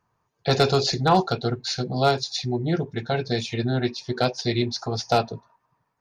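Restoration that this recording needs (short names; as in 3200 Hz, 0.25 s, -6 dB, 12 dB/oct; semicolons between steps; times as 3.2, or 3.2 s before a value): clip repair -9.5 dBFS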